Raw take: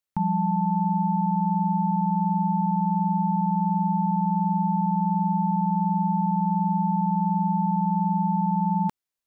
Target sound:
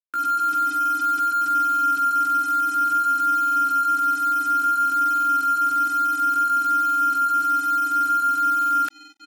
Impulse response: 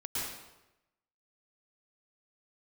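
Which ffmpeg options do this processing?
-filter_complex "[0:a]highpass=770,acontrast=76,flanger=delay=0.8:depth=4.6:regen=-43:speed=0.58:shape=sinusoidal,asplit=2[link_01][link_02];[link_02]adelay=1283,volume=-13dB,highshelf=frequency=4000:gain=-28.9[link_03];[link_01][link_03]amix=inputs=2:normalize=0,acrusher=bits=5:mix=0:aa=0.5,asetrate=70004,aresample=44100,atempo=0.629961,dynaudnorm=framelen=110:gausssize=3:maxgain=8dB,volume=-2.5dB"

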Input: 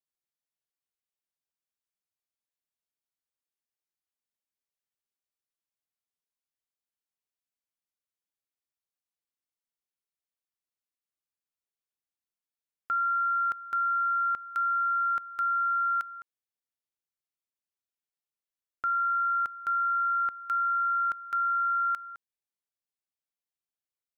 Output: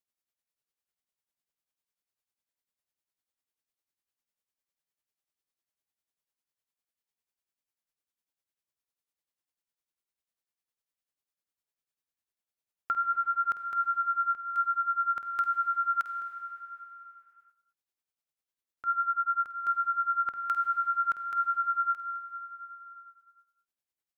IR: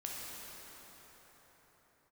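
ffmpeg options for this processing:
-filter_complex "[0:a]tremolo=f=10:d=0.83,asplit=2[link_01][link_02];[1:a]atrim=start_sample=2205,asetrate=61740,aresample=44100,adelay=49[link_03];[link_02][link_03]afir=irnorm=-1:irlink=0,volume=-5dB[link_04];[link_01][link_04]amix=inputs=2:normalize=0,volume=3dB"

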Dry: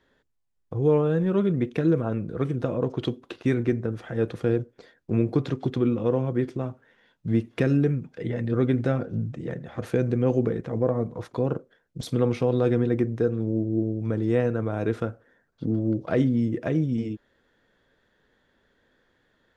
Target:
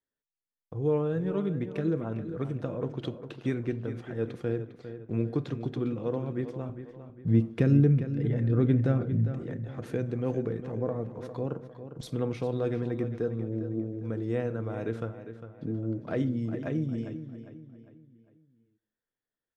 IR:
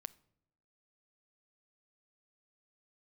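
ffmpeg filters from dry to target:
-filter_complex "[0:a]agate=range=-22dB:threshold=-58dB:ratio=16:detection=peak,asettb=1/sr,asplit=3[link_01][link_02][link_03];[link_01]atrim=end=6.694[link_04];[link_02]atrim=start=6.69:end=9.28,asetpts=PTS-STARTPTS,afade=type=in:duration=0.004:curve=qsin,afade=type=out:start_time=2.586:duration=0.004:curve=qsin,lowshelf=frequency=300:gain=9.5[link_05];[link_03]atrim=start=9.276[link_06];[link_04][link_05]acrossfade=duration=0.004:curve1=hsin:curve2=qsin[link_07];[link_07][link_06]acrossfade=duration=0.004:curve1=qsin:curve2=hsin,asplit=2[link_08][link_09];[link_09]adelay=403,lowpass=frequency=4600:poles=1,volume=-11dB,asplit=2[link_10][link_11];[link_11]adelay=403,lowpass=frequency=4600:poles=1,volume=0.42,asplit=2[link_12][link_13];[link_13]adelay=403,lowpass=frequency=4600:poles=1,volume=0.42,asplit=2[link_14][link_15];[link_15]adelay=403,lowpass=frequency=4600:poles=1,volume=0.42[link_16];[link_08][link_10][link_12][link_14][link_16]amix=inputs=5:normalize=0[link_17];[1:a]atrim=start_sample=2205,afade=type=out:start_time=0.27:duration=0.01,atrim=end_sample=12348[link_18];[link_17][link_18]afir=irnorm=-1:irlink=0,volume=-2.5dB"

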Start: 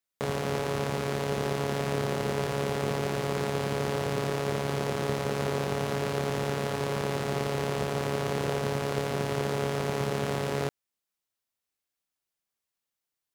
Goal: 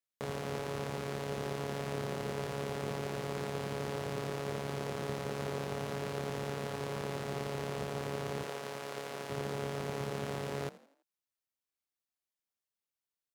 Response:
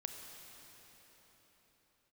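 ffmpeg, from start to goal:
-filter_complex "[0:a]asettb=1/sr,asplit=3[link_01][link_02][link_03];[link_01]atrim=end=8.434[link_04];[link_02]atrim=start=8.43:end=9.3,asetpts=PTS-STARTPTS,afade=type=in:duration=0.004:curve=qsin,afade=type=out:start_time=0.866:duration=0.004:curve=qsin,highpass=frequency=530:poles=1[link_05];[link_03]atrim=start=9.296[link_06];[link_04][link_05]acrossfade=duration=0.004:curve1=hsin:curve2=qsin[link_07];[link_07][link_06]acrossfade=duration=0.004:curve1=qsin:curve2=hsin,asplit=5[link_08][link_09][link_10][link_11][link_12];[link_09]adelay=83,afreqshift=45,volume=-18.5dB[link_13];[link_10]adelay=166,afreqshift=90,volume=-25.6dB[link_14];[link_11]adelay=249,afreqshift=135,volume=-32.8dB[link_15];[link_12]adelay=332,afreqshift=180,volume=-39.9dB[link_16];[link_08][link_13][link_14][link_15][link_16]amix=inputs=5:normalize=0,volume=-8dB"

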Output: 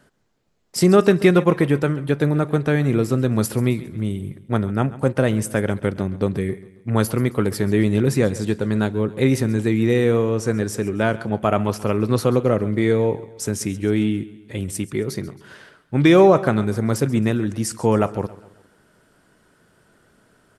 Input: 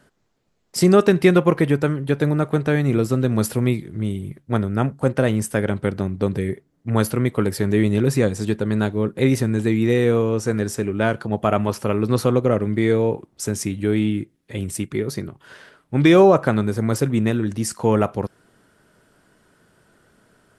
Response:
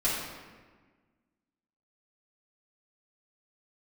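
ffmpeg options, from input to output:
-af "aecho=1:1:135|270|405|540:0.126|0.0567|0.0255|0.0115"

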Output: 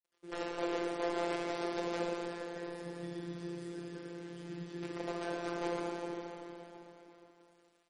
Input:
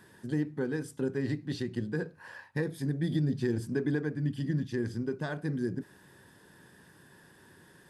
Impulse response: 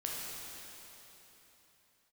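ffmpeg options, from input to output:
-filter_complex "[0:a]aecho=1:1:144:0.119,asettb=1/sr,asplit=3[link_01][link_02][link_03];[link_01]atrim=end=2.394[link_04];[link_02]atrim=start=2.39:end=4.83,asetpts=PTS-STARTPTS,afade=type=in:duration=0.004:curve=qsin,afade=type=out:start_time=2.436:duration=0.004:curve=qsin,acrossover=split=170|3000[link_05][link_06][link_07];[link_06]acompressor=threshold=-49dB:ratio=2.5[link_08];[link_05][link_08][link_07]amix=inputs=3:normalize=0[link_09];[link_03]atrim=start=4.826[link_10];[link_04][link_09]acrossfade=duration=0.004:curve1=hsin:curve2=qsin[link_11];[link_11][link_10]acrossfade=duration=0.004:curve1=qsin:curve2=hsin,aeval=exprs='(mod(16.8*val(0)+1,2)-1)/16.8':channel_layout=same,bandreject=frequency=50:width_type=h:width=6,bandreject=frequency=100:width_type=h:width=6,bandreject=frequency=150:width_type=h:width=6,bandreject=frequency=200:width_type=h:width=6,bandreject=frequency=250:width_type=h:width=6,bandreject=frequency=300:width_type=h:width=6,bandreject=frequency=350:width_type=h:width=6,acrusher=bits=7:mix=0:aa=0.000001,bass=frequency=250:gain=-11,treble=frequency=4000:gain=-6[link_12];[1:a]atrim=start_sample=2205[link_13];[link_12][link_13]afir=irnorm=-1:irlink=0,afftfilt=real='hypot(re,im)*cos(PI*b)':imag='0':win_size=1024:overlap=0.75,equalizer=frequency=430:width_type=o:width=1.4:gain=11,volume=-4dB" -ar 48000 -c:a libmp3lame -b:a 40k

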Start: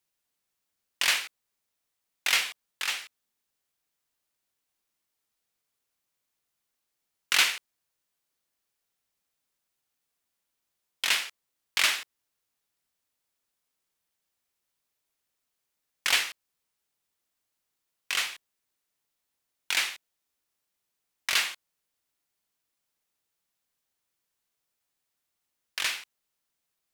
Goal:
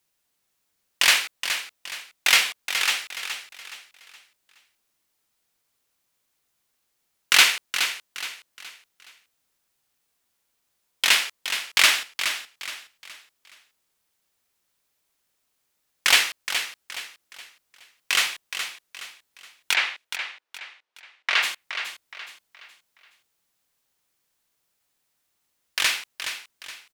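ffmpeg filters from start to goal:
ffmpeg -i in.wav -filter_complex "[0:a]asplit=3[link_01][link_02][link_03];[link_01]afade=type=out:start_time=19.73:duration=0.02[link_04];[link_02]highpass=470,lowpass=2900,afade=type=in:start_time=19.73:duration=0.02,afade=type=out:start_time=21.42:duration=0.02[link_05];[link_03]afade=type=in:start_time=21.42:duration=0.02[link_06];[link_04][link_05][link_06]amix=inputs=3:normalize=0,asplit=2[link_07][link_08];[link_08]aecho=0:1:420|840|1260|1680:0.355|0.128|0.046|0.0166[link_09];[link_07][link_09]amix=inputs=2:normalize=0,volume=7dB" out.wav

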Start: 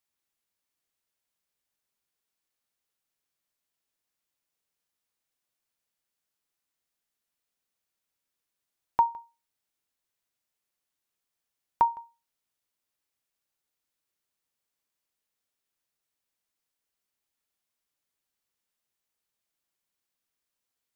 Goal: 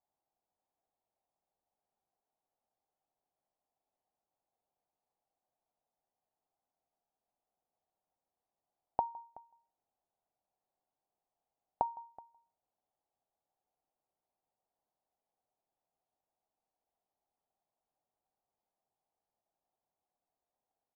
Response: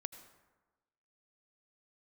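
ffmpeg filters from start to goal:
-af "acompressor=threshold=-36dB:ratio=8,lowpass=frequency=760:width_type=q:width=4.9,aecho=1:1:375:0.0841,volume=-1.5dB"

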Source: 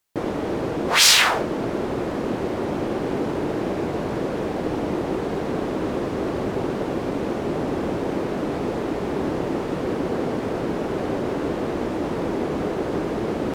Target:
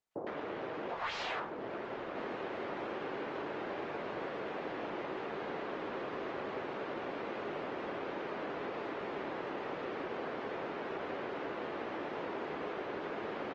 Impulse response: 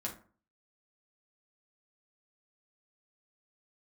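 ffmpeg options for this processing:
-filter_complex "[0:a]asplit=2[link_01][link_02];[link_02]equalizer=frequency=830:width=0.57:gain=-4.5[link_03];[1:a]atrim=start_sample=2205,asetrate=83790,aresample=44100[link_04];[link_03][link_04]afir=irnorm=-1:irlink=0,volume=-14.5dB[link_05];[link_01][link_05]amix=inputs=2:normalize=0,aeval=exprs='0.841*(cos(1*acos(clip(val(0)/0.841,-1,1)))-cos(1*PI/2))+0.133*(cos(2*acos(clip(val(0)/0.841,-1,1)))-cos(2*PI/2))+0.0237*(cos(3*acos(clip(val(0)/0.841,-1,1)))-cos(3*PI/2))+0.0841*(cos(4*acos(clip(val(0)/0.841,-1,1)))-cos(4*PI/2))+0.0211*(cos(7*acos(clip(val(0)/0.841,-1,1)))-cos(7*PI/2))':channel_layout=same,highpass=100,aresample=16000,asoftclip=type=hard:threshold=-15.5dB,aresample=44100,acrossover=split=510 3700:gain=0.224 1 0.0631[link_06][link_07][link_08];[link_06][link_07][link_08]amix=inputs=3:normalize=0,acrossover=split=780[link_09][link_10];[link_10]adelay=110[link_11];[link_09][link_11]amix=inputs=2:normalize=0,acrossover=split=210|980[link_12][link_13][link_14];[link_12]acompressor=threshold=-57dB:ratio=4[link_15];[link_13]acompressor=threshold=-41dB:ratio=4[link_16];[link_14]acompressor=threshold=-46dB:ratio=4[link_17];[link_15][link_16][link_17]amix=inputs=3:normalize=0,volume=1dB" -ar 48000 -c:a libopus -b:a 24k

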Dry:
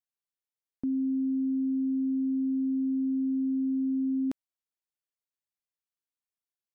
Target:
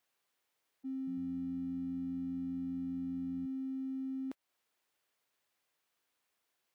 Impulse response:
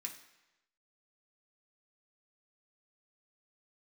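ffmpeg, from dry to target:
-filter_complex "[0:a]aeval=exprs='val(0)+0.5*0.00398*sgn(val(0))':channel_layout=same,highpass=frequency=46:width=0.5412,highpass=frequency=46:width=1.3066,bass=frequency=250:gain=-9,treble=frequency=4000:gain=-7,acompressor=threshold=-41dB:ratio=6,asoftclip=type=tanh:threshold=-35dB,alimiter=level_in=23.5dB:limit=-24dB:level=0:latency=1,volume=-23.5dB,agate=range=-32dB:threshold=-52dB:ratio=16:detection=peak,asettb=1/sr,asplit=3[link_01][link_02][link_03];[link_01]atrim=end=0.974[link_04];[link_02]atrim=start=0.97:end=3.46,asetpts=PTS-STARTPTS,afade=type=in:duration=0.004:curve=qsin,afade=type=out:start_time=2.486:duration=0.004:curve=qsin,asplit=5[link_05][link_06][link_07][link_08][link_09];[link_06]adelay=100,afreqshift=-85,volume=-11dB[link_10];[link_07]adelay=200,afreqshift=-170,volume=-20.1dB[link_11];[link_08]adelay=300,afreqshift=-255,volume=-29.2dB[link_12];[link_09]adelay=400,afreqshift=-340,volume=-38.4dB[link_13];[link_05][link_10][link_11][link_12][link_13]amix=inputs=5:normalize=0,atrim=end_sample=109809[link_14];[link_03]atrim=start=3.456[link_15];[link_04][link_14]acrossfade=duration=0.004:curve1=hsin:curve2=qsin[link_16];[link_16][link_15]acrossfade=duration=0.004:curve1=qsin:curve2=hsin,volume=12.5dB"

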